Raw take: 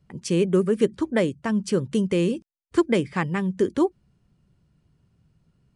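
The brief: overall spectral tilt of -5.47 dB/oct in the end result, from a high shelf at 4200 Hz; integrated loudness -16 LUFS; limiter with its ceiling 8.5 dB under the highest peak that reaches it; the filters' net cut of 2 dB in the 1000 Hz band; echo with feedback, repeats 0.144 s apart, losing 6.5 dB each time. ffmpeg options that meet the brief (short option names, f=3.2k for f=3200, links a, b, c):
-af "equalizer=f=1k:t=o:g=-3,highshelf=f=4.2k:g=9,alimiter=limit=-16.5dB:level=0:latency=1,aecho=1:1:144|288|432|576|720|864:0.473|0.222|0.105|0.0491|0.0231|0.0109,volume=10dB"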